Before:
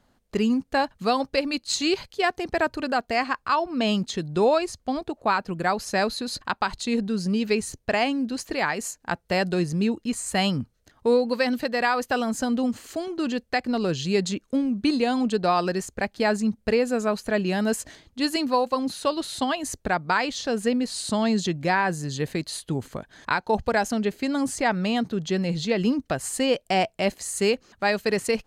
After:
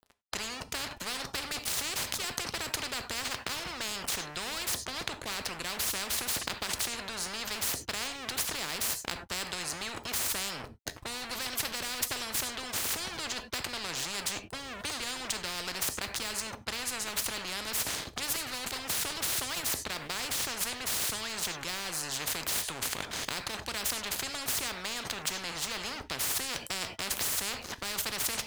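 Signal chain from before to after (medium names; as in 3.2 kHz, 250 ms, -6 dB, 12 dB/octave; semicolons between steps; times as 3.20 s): high-pass 67 Hz 24 dB/octave; bass shelf 180 Hz +12 dB; in parallel at +2.5 dB: compressor with a negative ratio -33 dBFS, ratio -0.5; on the sum: crossover distortion -38 dBFS; gated-style reverb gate 120 ms falling, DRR 12 dB; spectrum-flattening compressor 10:1; trim -6 dB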